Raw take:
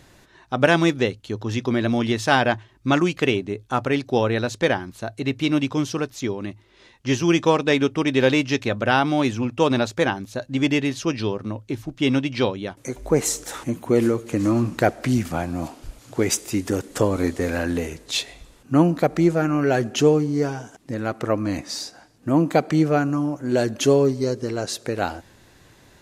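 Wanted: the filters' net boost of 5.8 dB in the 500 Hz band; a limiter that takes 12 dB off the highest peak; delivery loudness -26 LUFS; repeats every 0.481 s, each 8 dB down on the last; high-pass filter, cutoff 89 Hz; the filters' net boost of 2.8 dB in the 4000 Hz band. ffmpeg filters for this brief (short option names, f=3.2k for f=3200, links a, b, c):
-af "highpass=89,equalizer=f=500:t=o:g=7,equalizer=f=4k:t=o:g=3.5,alimiter=limit=-9.5dB:level=0:latency=1,aecho=1:1:481|962|1443|1924|2405:0.398|0.159|0.0637|0.0255|0.0102,volume=-4.5dB"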